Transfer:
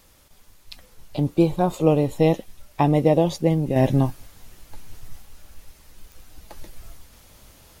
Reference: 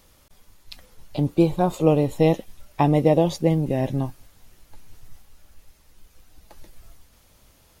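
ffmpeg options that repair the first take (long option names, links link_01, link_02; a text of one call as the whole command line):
ffmpeg -i in.wav -af "adeclick=threshold=4,agate=range=-21dB:threshold=-44dB,asetnsamples=nb_out_samples=441:pad=0,asendcmd='3.76 volume volume -6dB',volume=0dB" out.wav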